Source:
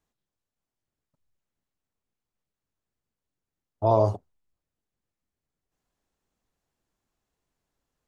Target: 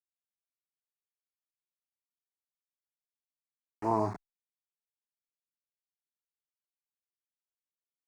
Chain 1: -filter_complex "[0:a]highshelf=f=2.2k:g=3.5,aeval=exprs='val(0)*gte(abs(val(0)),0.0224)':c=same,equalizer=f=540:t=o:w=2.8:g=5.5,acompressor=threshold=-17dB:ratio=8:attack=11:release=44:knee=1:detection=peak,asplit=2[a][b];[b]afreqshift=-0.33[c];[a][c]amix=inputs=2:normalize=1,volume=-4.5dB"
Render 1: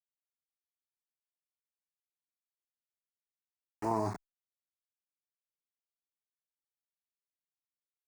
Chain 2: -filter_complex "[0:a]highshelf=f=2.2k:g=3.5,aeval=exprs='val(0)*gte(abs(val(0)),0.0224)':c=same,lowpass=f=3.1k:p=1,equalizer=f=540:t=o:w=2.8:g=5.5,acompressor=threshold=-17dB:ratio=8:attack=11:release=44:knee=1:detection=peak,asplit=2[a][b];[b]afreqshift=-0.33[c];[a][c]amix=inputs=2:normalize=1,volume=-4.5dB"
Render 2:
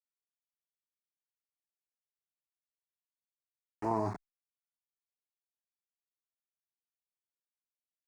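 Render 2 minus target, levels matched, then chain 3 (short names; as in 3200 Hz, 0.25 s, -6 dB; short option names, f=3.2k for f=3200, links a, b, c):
compressor: peak gain reduction +5 dB
-filter_complex "[0:a]highshelf=f=2.2k:g=3.5,aeval=exprs='val(0)*gte(abs(val(0)),0.0224)':c=same,lowpass=f=3.1k:p=1,equalizer=f=540:t=o:w=2.8:g=5.5,asplit=2[a][b];[b]afreqshift=-0.33[c];[a][c]amix=inputs=2:normalize=1,volume=-4.5dB"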